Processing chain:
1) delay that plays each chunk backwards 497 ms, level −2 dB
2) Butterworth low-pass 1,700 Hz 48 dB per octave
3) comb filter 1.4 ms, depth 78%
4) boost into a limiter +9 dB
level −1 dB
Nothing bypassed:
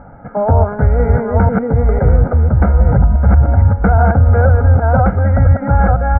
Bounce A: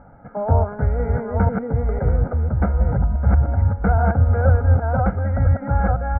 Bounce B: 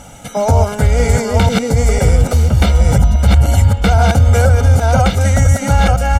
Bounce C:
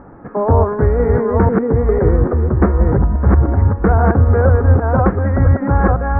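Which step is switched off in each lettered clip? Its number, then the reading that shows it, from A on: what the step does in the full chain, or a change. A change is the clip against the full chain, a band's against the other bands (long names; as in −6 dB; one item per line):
4, change in crest factor +4.5 dB
2, 2 kHz band +3.0 dB
3, 500 Hz band +3.5 dB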